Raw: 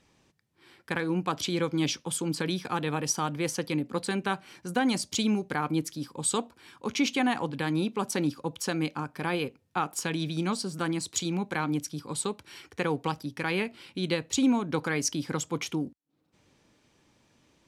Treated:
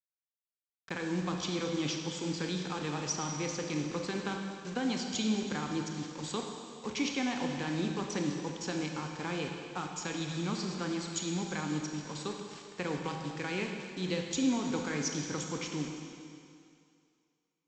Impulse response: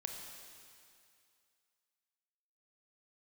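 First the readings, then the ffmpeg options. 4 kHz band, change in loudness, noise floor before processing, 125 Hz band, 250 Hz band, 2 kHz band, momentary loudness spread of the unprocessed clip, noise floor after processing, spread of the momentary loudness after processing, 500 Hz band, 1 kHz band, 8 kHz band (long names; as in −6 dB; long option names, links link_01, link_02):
−4.0 dB, −5.0 dB, −69 dBFS, −4.0 dB, −4.5 dB, −5.5 dB, 6 LU, below −85 dBFS, 7 LU, −5.0 dB, −7.0 dB, −6.0 dB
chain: -filter_complex "[0:a]acrossover=split=420|3000[link_01][link_02][link_03];[link_02]acompressor=threshold=-30dB:ratio=6[link_04];[link_01][link_04][link_03]amix=inputs=3:normalize=0,aresample=16000,acrusher=bits=6:mix=0:aa=0.000001,aresample=44100[link_05];[1:a]atrim=start_sample=2205[link_06];[link_05][link_06]afir=irnorm=-1:irlink=0,volume=-3dB"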